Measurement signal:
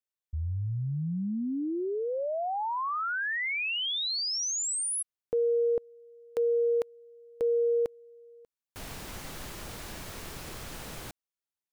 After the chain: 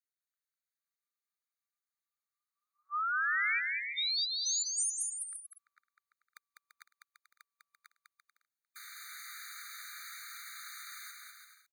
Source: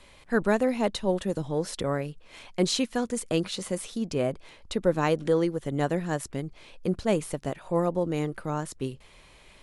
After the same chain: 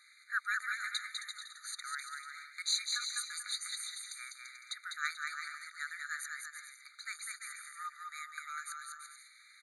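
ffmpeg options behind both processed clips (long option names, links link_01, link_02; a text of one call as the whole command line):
ffmpeg -i in.wav -af "aecho=1:1:200|340|438|506.6|554.6:0.631|0.398|0.251|0.158|0.1,afftfilt=real='re*eq(mod(floor(b*sr/1024/1200),2),1)':imag='im*eq(mod(floor(b*sr/1024/1200),2),1)':win_size=1024:overlap=0.75,volume=-1.5dB" out.wav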